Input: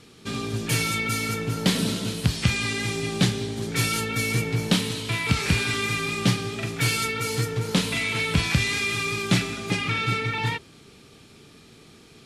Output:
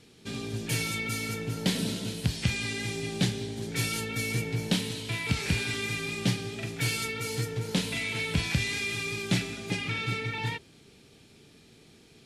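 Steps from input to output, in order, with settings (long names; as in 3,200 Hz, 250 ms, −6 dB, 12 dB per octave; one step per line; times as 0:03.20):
parametric band 1,200 Hz −7.5 dB 0.41 octaves
level −5.5 dB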